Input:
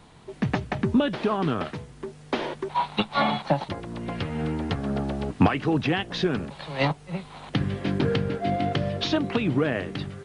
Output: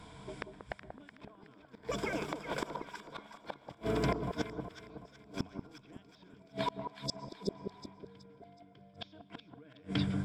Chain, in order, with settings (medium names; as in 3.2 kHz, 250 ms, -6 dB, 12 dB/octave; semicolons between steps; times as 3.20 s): band-stop 400 Hz, Q 12; ever faster or slower copies 708 ms, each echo +6 st, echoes 2, each echo -6 dB; rippled EQ curve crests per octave 1.7, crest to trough 10 dB; inverted gate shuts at -18 dBFS, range -35 dB; spectral replace 6.92–7.91 s, 690–3400 Hz before; echo whose repeats swap between lows and highs 186 ms, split 1.2 kHz, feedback 63%, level -6 dB; on a send at -22 dB: reverberation RT60 0.95 s, pre-delay 80 ms; on the sum: trim -1.5 dB